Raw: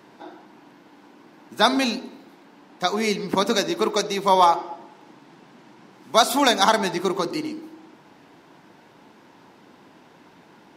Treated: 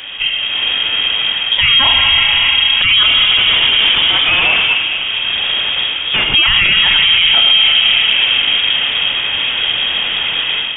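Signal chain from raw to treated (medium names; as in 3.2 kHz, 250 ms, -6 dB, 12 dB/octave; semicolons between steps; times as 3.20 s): bass shelf 260 Hz +4.5 dB; level rider gain up to 11.5 dB; 3.03–6.34 s: hard clipper -33 dBFS, distortion -1 dB; plate-style reverb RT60 4.6 s, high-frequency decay 0.6×, DRR 5.5 dB; frequency inversion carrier 3.5 kHz; loudness maximiser +22 dB; trim -1.5 dB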